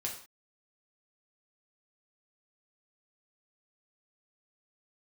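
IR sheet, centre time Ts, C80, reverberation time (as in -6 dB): 24 ms, 11.0 dB, no single decay rate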